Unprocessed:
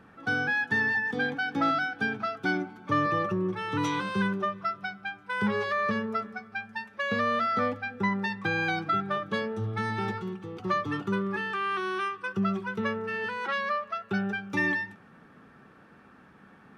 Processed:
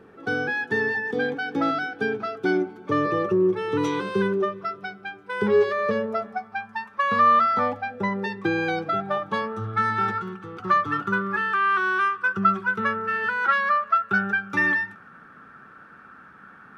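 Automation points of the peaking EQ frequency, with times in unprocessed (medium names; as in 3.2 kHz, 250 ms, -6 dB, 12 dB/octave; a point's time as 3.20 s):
peaking EQ +15 dB 0.61 oct
5.69 s 410 Hz
6.80 s 1.1 kHz
7.43 s 1.1 kHz
8.49 s 350 Hz
9.68 s 1.4 kHz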